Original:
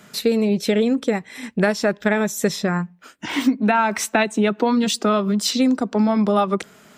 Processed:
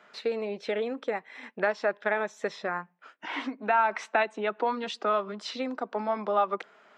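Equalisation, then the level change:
high-pass filter 680 Hz 12 dB per octave
head-to-tape spacing loss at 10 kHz 35 dB
0.0 dB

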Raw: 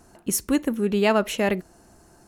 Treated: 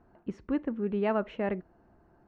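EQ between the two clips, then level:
low-pass filter 1,800 Hz 12 dB per octave
high-frequency loss of the air 120 metres
−7.5 dB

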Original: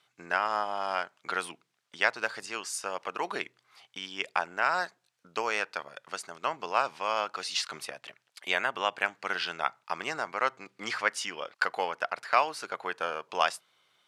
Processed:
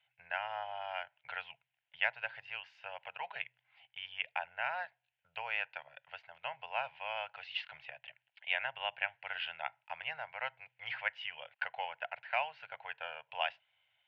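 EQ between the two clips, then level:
Chebyshev band-stop filter 120–920 Hz, order 2
elliptic low-pass filter 2,900 Hz, stop band 80 dB
phaser with its sweep stopped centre 490 Hz, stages 4
+1.0 dB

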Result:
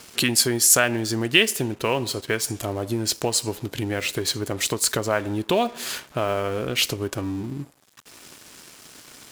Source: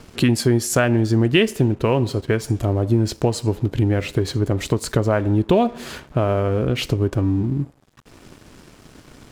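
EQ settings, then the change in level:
spectral tilt +3.5 dB per octave
−1.0 dB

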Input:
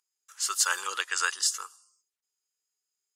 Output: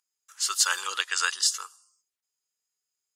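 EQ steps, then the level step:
dynamic equaliser 3,800 Hz, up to +6 dB, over −43 dBFS, Q 1.2
parametric band 340 Hz −2.5 dB 1.1 octaves
0.0 dB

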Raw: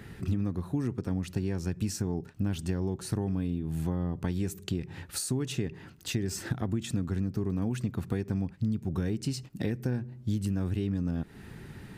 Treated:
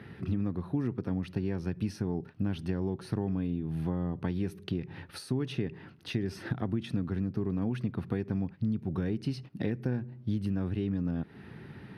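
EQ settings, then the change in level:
moving average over 6 samples
high-pass filter 98 Hz
0.0 dB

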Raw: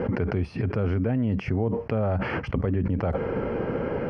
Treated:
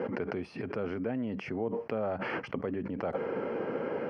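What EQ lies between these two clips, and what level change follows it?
high-pass filter 250 Hz 12 dB per octave
−4.5 dB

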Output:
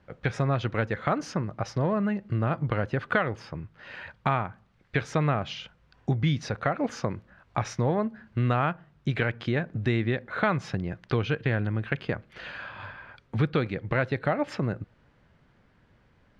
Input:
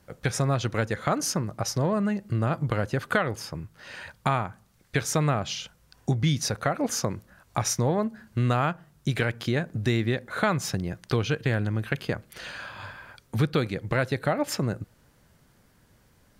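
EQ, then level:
Chebyshev low-pass filter 2,600 Hz, order 2
0.0 dB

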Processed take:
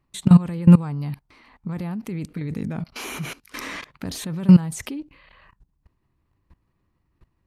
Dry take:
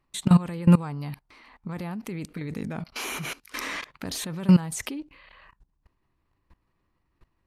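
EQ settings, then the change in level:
parametric band 110 Hz +7.5 dB 3 octaves
−1.0 dB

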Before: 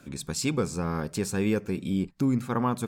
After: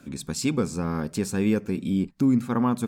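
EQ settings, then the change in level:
parametric band 240 Hz +6 dB 0.63 octaves
0.0 dB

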